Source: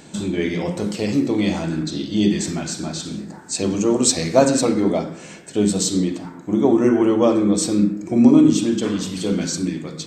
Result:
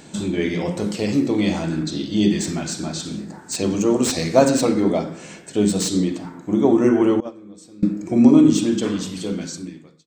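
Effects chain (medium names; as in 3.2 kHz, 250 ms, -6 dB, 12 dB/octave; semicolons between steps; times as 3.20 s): fade out at the end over 1.27 s; 7.20–7.83 s: gate -10 dBFS, range -24 dB; slew-rate limiter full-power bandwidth 540 Hz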